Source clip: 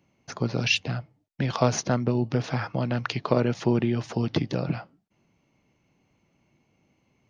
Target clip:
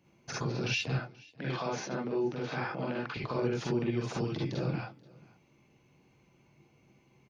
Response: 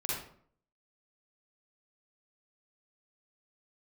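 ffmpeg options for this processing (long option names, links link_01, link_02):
-filter_complex "[0:a]acompressor=threshold=-32dB:ratio=2,alimiter=limit=-24dB:level=0:latency=1:release=46,asettb=1/sr,asplit=3[link_01][link_02][link_03];[link_01]atrim=end=0.924[link_04];[link_02]atrim=start=0.92:end=3.17,asetpts=PTS-STARTPTS,afade=type=in:duration=0.004:curve=qsin,afade=type=out:start_time=2.246:duration=0.004:curve=qsin,highpass=210,lowpass=4200[link_05];[link_03]atrim=start=3.166[link_06];[link_04][link_05]acrossfade=duration=0.004:curve1=hsin:curve2=qsin[link_07];[link_07][link_06]acrossfade=duration=0.004:curve1=qsin:curve2=hsin,aecho=1:1:482:0.0631[link_08];[1:a]atrim=start_sample=2205,atrim=end_sample=3528[link_09];[link_08][link_09]afir=irnorm=-1:irlink=0"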